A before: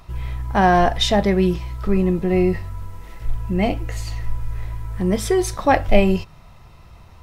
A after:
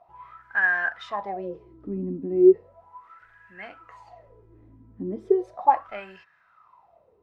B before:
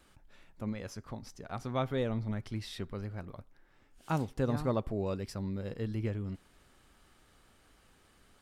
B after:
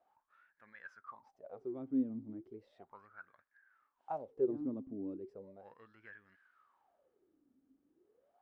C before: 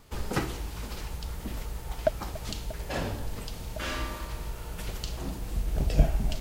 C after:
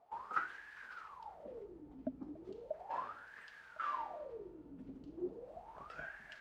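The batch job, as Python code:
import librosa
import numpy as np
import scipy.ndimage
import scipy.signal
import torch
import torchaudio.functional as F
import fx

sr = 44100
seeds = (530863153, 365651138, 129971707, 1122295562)

y = fx.wah_lfo(x, sr, hz=0.36, low_hz=260.0, high_hz=1700.0, q=16.0)
y = y * 10.0 ** (9.0 / 20.0)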